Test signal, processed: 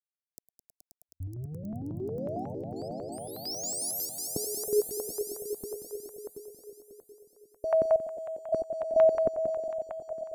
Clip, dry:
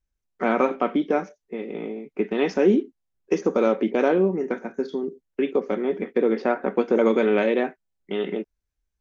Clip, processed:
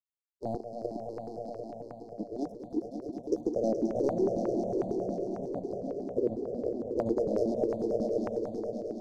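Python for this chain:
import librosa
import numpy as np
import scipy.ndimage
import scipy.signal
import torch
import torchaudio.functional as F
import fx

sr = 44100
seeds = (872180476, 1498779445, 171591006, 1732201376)

y = fx.power_curve(x, sr, exponent=2.0)
y = fx.step_gate(y, sr, bpm=125, pattern='xxxxx..x..xxxxxx', floor_db=-60.0, edge_ms=4.5)
y = scipy.signal.sosfilt(scipy.signal.cheby1(4, 1.0, [710.0, 4800.0], 'bandstop', fs=sr, output='sos'), y)
y = fx.echo_swell(y, sr, ms=106, loudest=5, wet_db=-8.0)
y = fx.phaser_held(y, sr, hz=11.0, low_hz=400.0, high_hz=1500.0)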